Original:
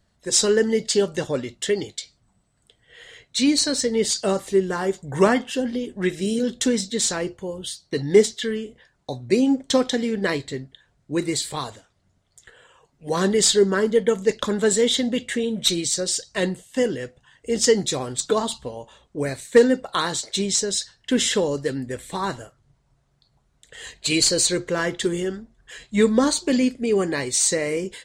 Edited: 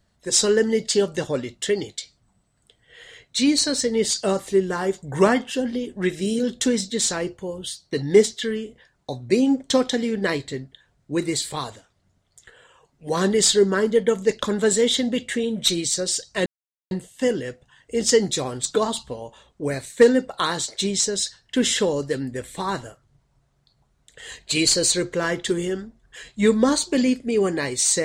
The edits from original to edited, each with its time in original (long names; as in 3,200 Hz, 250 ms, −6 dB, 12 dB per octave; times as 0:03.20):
0:16.46: splice in silence 0.45 s